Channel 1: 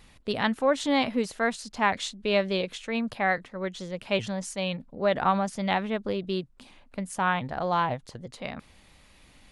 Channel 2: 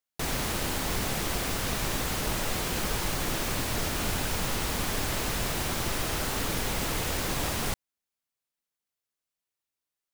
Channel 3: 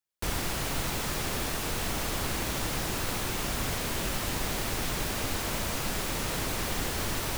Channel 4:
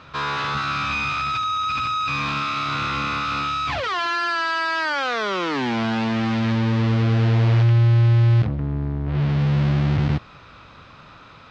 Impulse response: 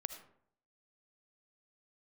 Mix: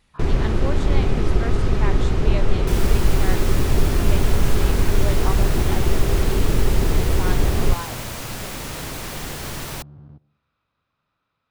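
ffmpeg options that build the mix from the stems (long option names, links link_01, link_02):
-filter_complex "[0:a]volume=-8dB[link_01];[1:a]equalizer=frequency=390:width=3.8:gain=10.5,acrossover=split=9200[link_02][link_03];[link_03]acompressor=threshold=-43dB:ratio=4:attack=1:release=60[link_04];[link_02][link_04]amix=inputs=2:normalize=0,aemphasis=mode=reproduction:type=riaa,volume=0.5dB[link_05];[2:a]adelay=2450,volume=0.5dB[link_06];[3:a]afwtdn=0.0355,adynamicequalizer=threshold=0.0112:dfrequency=1200:dqfactor=0.71:tfrequency=1200:tqfactor=0.71:attack=5:release=100:ratio=0.375:range=2.5:mode=cutabove:tftype=bell,acompressor=threshold=-27dB:ratio=4,volume=-17.5dB,asplit=2[link_07][link_08];[link_08]volume=-6.5dB[link_09];[4:a]atrim=start_sample=2205[link_10];[link_09][link_10]afir=irnorm=-1:irlink=0[link_11];[link_01][link_05][link_06][link_07][link_11]amix=inputs=5:normalize=0"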